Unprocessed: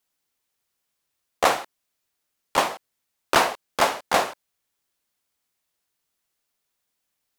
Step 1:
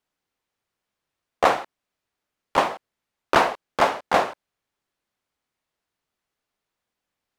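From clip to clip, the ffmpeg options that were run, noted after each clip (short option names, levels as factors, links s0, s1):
-af "lowpass=f=2000:p=1,volume=1.33"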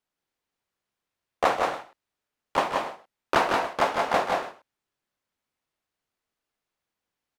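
-af "aecho=1:1:157|179|284:0.398|0.596|0.15,volume=0.596"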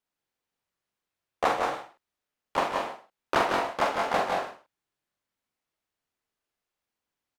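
-filter_complex "[0:a]asplit=2[s0][s1];[s1]adelay=44,volume=0.531[s2];[s0][s2]amix=inputs=2:normalize=0,volume=0.708"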